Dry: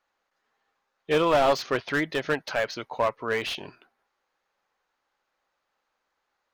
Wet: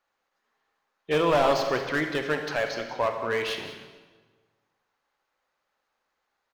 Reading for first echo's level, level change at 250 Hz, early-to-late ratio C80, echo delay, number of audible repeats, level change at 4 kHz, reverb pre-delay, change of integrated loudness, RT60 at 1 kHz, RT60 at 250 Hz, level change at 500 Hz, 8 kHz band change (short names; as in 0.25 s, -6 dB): -14.0 dB, 0.0 dB, 7.0 dB, 0.187 s, 1, -0.5 dB, 35 ms, 0.0 dB, 1.3 s, 1.5 s, 0.0 dB, -0.5 dB